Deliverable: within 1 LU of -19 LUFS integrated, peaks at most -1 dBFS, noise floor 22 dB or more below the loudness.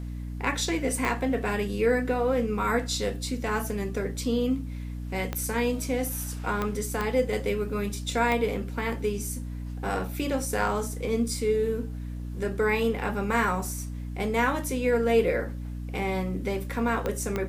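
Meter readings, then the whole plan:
clicks 7; hum 60 Hz; harmonics up to 300 Hz; hum level -32 dBFS; loudness -28.0 LUFS; peak -10.5 dBFS; loudness target -19.0 LUFS
-> de-click; notches 60/120/180/240/300 Hz; gain +9 dB

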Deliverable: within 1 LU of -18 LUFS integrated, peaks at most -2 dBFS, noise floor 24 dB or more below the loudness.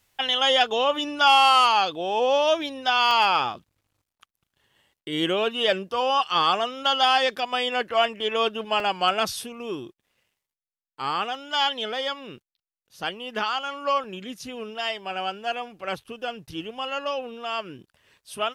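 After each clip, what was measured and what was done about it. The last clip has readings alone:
dropouts 4; longest dropout 1.7 ms; loudness -23.5 LUFS; peak -8.0 dBFS; loudness target -18.0 LUFS
-> interpolate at 3.11/8.8/11.35/14.04, 1.7 ms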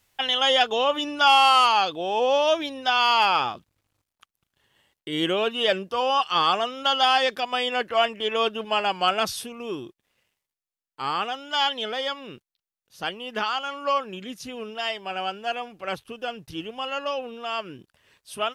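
dropouts 0; loudness -23.5 LUFS; peak -8.0 dBFS; loudness target -18.0 LUFS
-> gain +5.5 dB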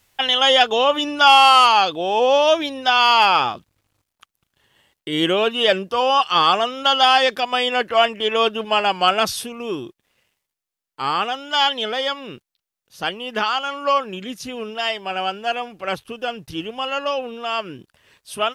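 loudness -18.0 LUFS; peak -2.5 dBFS; noise floor -84 dBFS

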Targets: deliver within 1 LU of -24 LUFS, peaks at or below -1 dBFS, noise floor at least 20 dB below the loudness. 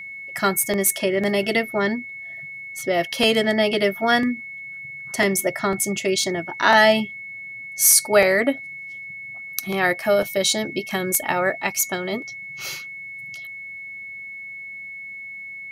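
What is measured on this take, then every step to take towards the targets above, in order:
steady tone 2200 Hz; tone level -33 dBFS; loudness -20.5 LUFS; peak -1.5 dBFS; loudness target -24.0 LUFS
-> notch 2200 Hz, Q 30; gain -3.5 dB

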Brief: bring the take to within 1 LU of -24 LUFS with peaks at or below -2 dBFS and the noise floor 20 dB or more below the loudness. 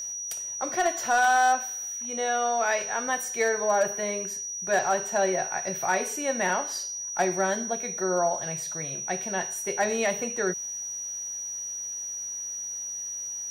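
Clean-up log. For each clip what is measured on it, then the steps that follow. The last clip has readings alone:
clipped 0.2%; flat tops at -16.0 dBFS; steady tone 5800 Hz; tone level -32 dBFS; loudness -27.0 LUFS; peak -16.0 dBFS; loudness target -24.0 LUFS
-> clip repair -16 dBFS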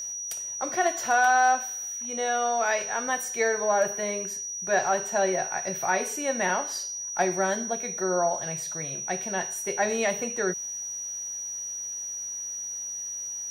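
clipped 0.0%; steady tone 5800 Hz; tone level -32 dBFS
-> notch 5800 Hz, Q 30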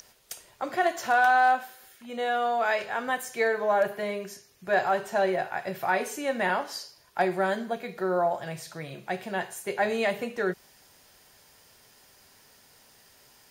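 steady tone none; loudness -27.5 LUFS; peak -11.5 dBFS; loudness target -24.0 LUFS
-> gain +3.5 dB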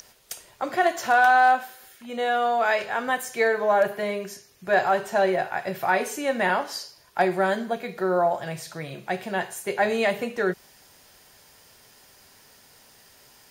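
loudness -24.0 LUFS; peak -8.0 dBFS; noise floor -55 dBFS

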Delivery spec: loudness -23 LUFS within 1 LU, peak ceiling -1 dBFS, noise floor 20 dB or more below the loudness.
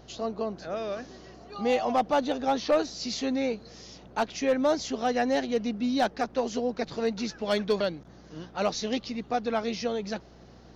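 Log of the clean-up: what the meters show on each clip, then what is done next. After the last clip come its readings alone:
clipped 0.3%; flat tops at -17.0 dBFS; hum 60 Hz; harmonics up to 360 Hz; hum level -53 dBFS; loudness -29.0 LUFS; peak -17.0 dBFS; loudness target -23.0 LUFS
-> clip repair -17 dBFS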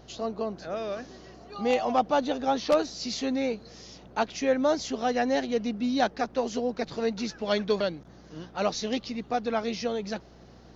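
clipped 0.0%; hum 60 Hz; harmonics up to 360 Hz; hum level -53 dBFS
-> de-hum 60 Hz, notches 6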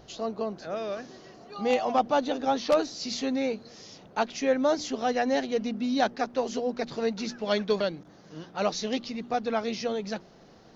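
hum none; loudness -29.0 LUFS; peak -9.0 dBFS; loudness target -23.0 LUFS
-> gain +6 dB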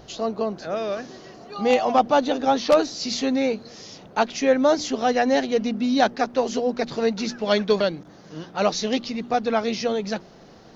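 loudness -23.0 LUFS; peak -3.0 dBFS; noise floor -48 dBFS

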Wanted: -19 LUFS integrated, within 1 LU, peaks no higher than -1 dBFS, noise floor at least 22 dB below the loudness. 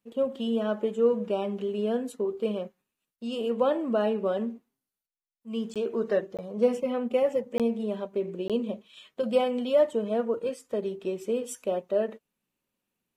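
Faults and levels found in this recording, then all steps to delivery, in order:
dropouts 4; longest dropout 17 ms; loudness -28.5 LUFS; peak -11.5 dBFS; loudness target -19.0 LUFS
-> interpolate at 5.74/6.37/7.58/8.48, 17 ms; gain +9.5 dB

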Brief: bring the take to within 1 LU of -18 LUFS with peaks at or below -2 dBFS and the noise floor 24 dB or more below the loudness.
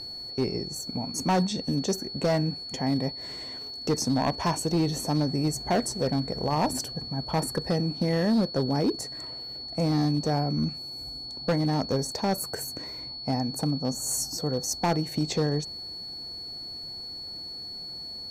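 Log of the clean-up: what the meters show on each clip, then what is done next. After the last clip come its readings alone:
clipped 1.3%; flat tops at -19.0 dBFS; steady tone 4400 Hz; tone level -36 dBFS; loudness -28.5 LUFS; peak -19.0 dBFS; loudness target -18.0 LUFS
-> clip repair -19 dBFS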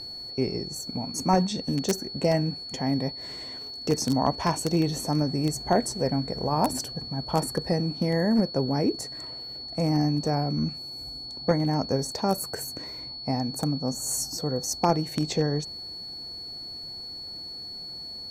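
clipped 0.0%; steady tone 4400 Hz; tone level -36 dBFS
-> notch 4400 Hz, Q 30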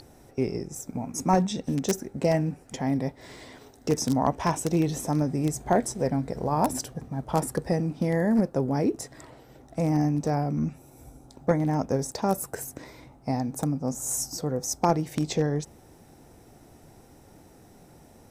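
steady tone none; loudness -27.5 LUFS; peak -9.5 dBFS; loudness target -18.0 LUFS
-> gain +9.5 dB; limiter -2 dBFS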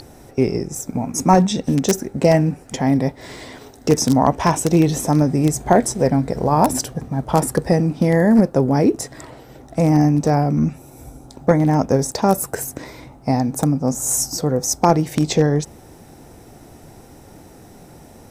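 loudness -18.0 LUFS; peak -2.0 dBFS; noise floor -44 dBFS

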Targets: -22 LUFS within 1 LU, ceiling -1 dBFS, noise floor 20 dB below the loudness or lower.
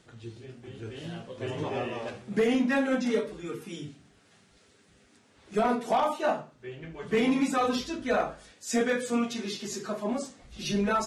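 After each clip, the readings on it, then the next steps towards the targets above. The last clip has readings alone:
clipped 0.4%; flat tops at -18.5 dBFS; loudness -29.5 LUFS; peak -18.5 dBFS; loudness target -22.0 LUFS
-> clip repair -18.5 dBFS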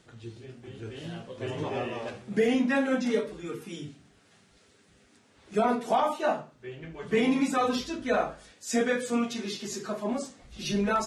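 clipped 0.0%; loudness -29.0 LUFS; peak -13.5 dBFS; loudness target -22.0 LUFS
-> gain +7 dB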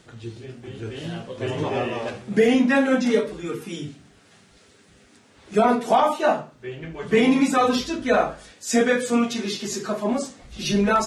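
loudness -22.0 LUFS; peak -6.5 dBFS; noise floor -55 dBFS

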